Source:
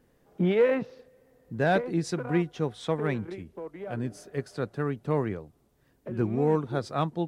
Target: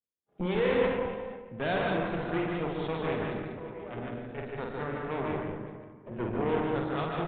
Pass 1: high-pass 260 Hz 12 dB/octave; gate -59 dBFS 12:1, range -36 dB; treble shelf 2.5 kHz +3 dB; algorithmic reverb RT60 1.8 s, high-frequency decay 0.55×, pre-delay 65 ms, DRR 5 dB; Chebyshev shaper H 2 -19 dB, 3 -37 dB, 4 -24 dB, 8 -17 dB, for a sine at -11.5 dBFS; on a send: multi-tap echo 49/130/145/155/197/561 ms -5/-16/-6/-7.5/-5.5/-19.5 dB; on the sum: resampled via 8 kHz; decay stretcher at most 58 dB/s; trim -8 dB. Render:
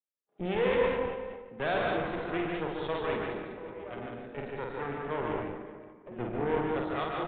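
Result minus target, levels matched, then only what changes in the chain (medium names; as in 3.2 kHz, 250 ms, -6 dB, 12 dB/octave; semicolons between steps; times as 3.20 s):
125 Hz band -4.0 dB
change: high-pass 66 Hz 12 dB/octave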